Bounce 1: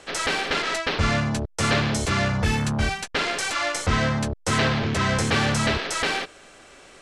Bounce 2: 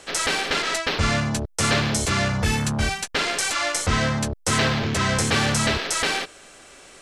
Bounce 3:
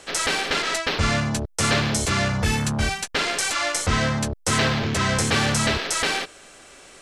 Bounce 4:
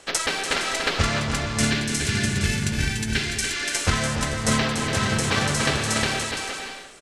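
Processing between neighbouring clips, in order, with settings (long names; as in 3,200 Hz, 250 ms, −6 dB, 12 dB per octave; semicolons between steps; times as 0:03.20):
high-shelf EQ 6,100 Hz +9.5 dB
no processing that can be heard
gain on a spectral selection 0:01.47–0:03.76, 450–1,400 Hz −11 dB; bouncing-ball delay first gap 290 ms, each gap 0.6×, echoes 5; transient designer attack +8 dB, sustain +3 dB; level −4 dB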